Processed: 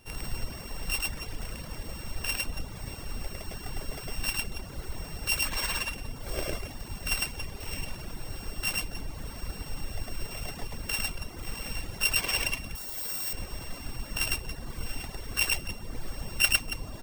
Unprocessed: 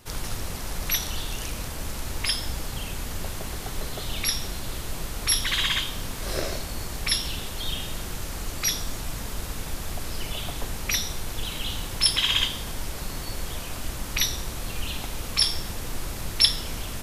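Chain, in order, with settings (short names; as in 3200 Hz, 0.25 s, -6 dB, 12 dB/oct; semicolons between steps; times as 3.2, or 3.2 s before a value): sample sorter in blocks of 16 samples; loudspeakers at several distances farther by 36 m 0 dB, 96 m -9 dB; reverb removal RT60 1.1 s; 12.75–13.33 RIAA curve recording; gain -5 dB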